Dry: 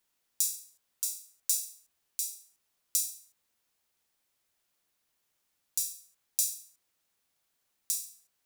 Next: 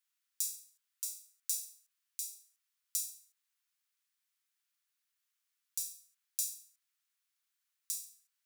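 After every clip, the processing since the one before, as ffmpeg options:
-af "highpass=f=1200:w=0.5412,highpass=f=1200:w=1.3066,volume=0.473"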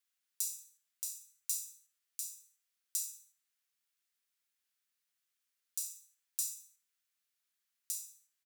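-af "afreqshift=110,aecho=1:1:61|122|183|244:0.188|0.0753|0.0301|0.0121,volume=0.891"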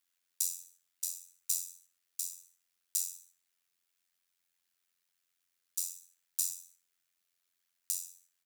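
-af "tremolo=f=88:d=0.857,volume=2.37"

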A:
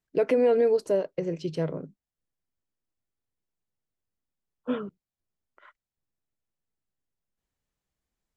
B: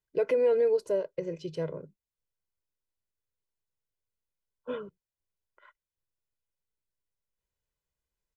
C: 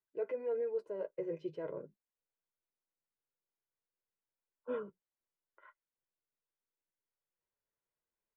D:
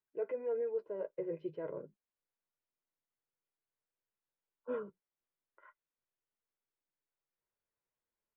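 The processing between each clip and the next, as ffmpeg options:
-af "aecho=1:1:2:0.56,volume=0.501"
-filter_complex "[0:a]acrossover=split=180 2400:gain=0.2 1 0.0891[s0][s1][s2];[s0][s1][s2]amix=inputs=3:normalize=0,areverse,acompressor=threshold=0.0224:ratio=6,areverse,flanger=delay=7.9:depth=1.6:regen=-29:speed=1.5:shape=triangular,volume=1.26"
-af "lowpass=2500"

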